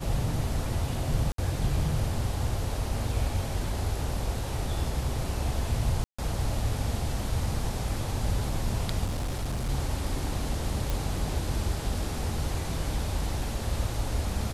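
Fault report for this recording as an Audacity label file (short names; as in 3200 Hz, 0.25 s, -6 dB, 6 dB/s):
1.320000	1.380000	gap 63 ms
6.040000	6.180000	gap 0.145 s
9.060000	9.700000	clipped -26.5 dBFS
10.900000	10.900000	pop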